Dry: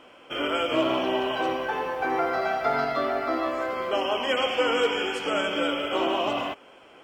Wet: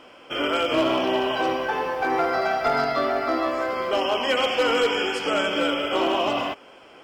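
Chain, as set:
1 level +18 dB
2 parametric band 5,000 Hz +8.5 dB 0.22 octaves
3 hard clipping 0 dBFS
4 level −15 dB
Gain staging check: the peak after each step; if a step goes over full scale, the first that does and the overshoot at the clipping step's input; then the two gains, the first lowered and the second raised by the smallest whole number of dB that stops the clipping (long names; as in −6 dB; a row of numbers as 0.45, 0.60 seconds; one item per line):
+7.0, +7.0, 0.0, −15.0 dBFS
step 1, 7.0 dB
step 1 +11 dB, step 4 −8 dB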